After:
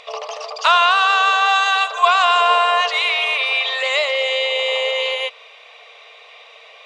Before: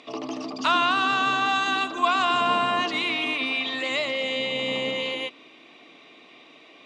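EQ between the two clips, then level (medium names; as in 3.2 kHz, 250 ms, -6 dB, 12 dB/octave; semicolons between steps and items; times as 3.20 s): brick-wall FIR high-pass 430 Hz; +8.0 dB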